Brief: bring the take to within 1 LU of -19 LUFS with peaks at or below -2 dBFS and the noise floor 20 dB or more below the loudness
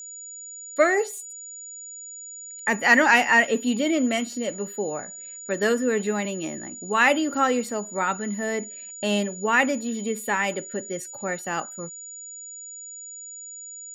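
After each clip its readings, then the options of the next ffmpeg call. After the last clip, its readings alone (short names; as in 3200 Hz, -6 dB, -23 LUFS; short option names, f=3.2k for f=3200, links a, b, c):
steady tone 6900 Hz; tone level -37 dBFS; loudness -23.5 LUFS; peak -5.5 dBFS; loudness target -19.0 LUFS
-> -af "bandreject=f=6.9k:w=30"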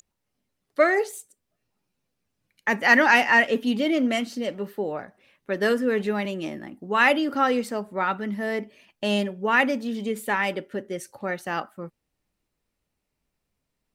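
steady tone none; loudness -23.5 LUFS; peak -5.5 dBFS; loudness target -19.0 LUFS
-> -af "volume=4.5dB,alimiter=limit=-2dB:level=0:latency=1"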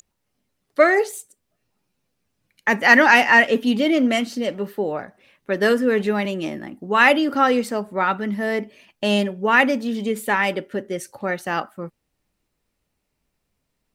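loudness -19.0 LUFS; peak -2.0 dBFS; noise floor -76 dBFS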